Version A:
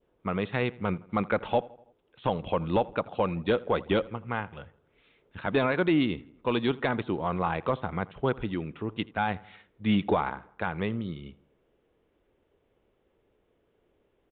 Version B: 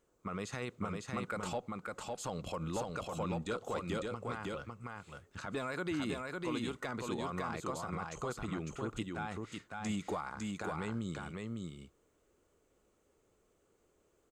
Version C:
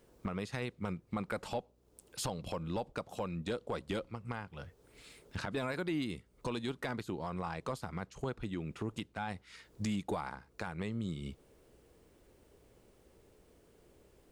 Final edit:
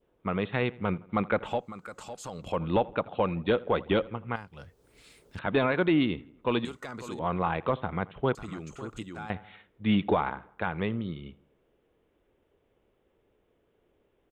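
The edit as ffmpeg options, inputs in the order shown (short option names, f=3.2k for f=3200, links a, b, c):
-filter_complex "[1:a]asplit=3[a][b][c];[0:a]asplit=5[d][e][f][g][h];[d]atrim=end=1.67[i];[a]atrim=start=1.43:end=2.63[j];[e]atrim=start=2.39:end=4.362[k];[2:a]atrim=start=4.358:end=5.392[l];[f]atrim=start=5.388:end=6.652[m];[b]atrim=start=6.648:end=7.192[n];[g]atrim=start=7.188:end=8.352[o];[c]atrim=start=8.348:end=9.302[p];[h]atrim=start=9.298[q];[i][j]acrossfade=d=0.24:c1=tri:c2=tri[r];[r][k]acrossfade=d=0.24:c1=tri:c2=tri[s];[s][l]acrossfade=d=0.004:c1=hsin:c2=hsin[t];[t][m]acrossfade=d=0.004:c1=hsin:c2=hsin[u];[u][n]acrossfade=d=0.004:c1=hsin:c2=hsin[v];[v][o]acrossfade=d=0.004:c1=hsin:c2=hsin[w];[w][p]acrossfade=d=0.004:c1=hsin:c2=hsin[x];[x][q]acrossfade=d=0.004:c1=hsin:c2=hsin"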